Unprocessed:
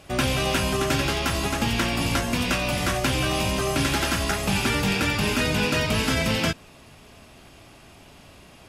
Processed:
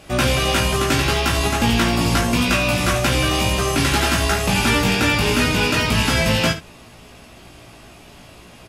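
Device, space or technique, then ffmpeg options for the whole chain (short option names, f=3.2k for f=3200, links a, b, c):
slapback doubling: -filter_complex "[0:a]asplit=3[a][b][c];[b]adelay=17,volume=-3dB[d];[c]adelay=74,volume=-11dB[e];[a][d][e]amix=inputs=3:normalize=0,volume=3.5dB"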